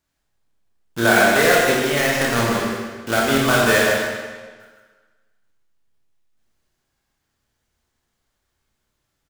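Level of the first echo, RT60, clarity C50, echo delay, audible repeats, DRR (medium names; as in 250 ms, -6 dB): -6.5 dB, 1.4 s, -2.0 dB, 154 ms, 1, -4.5 dB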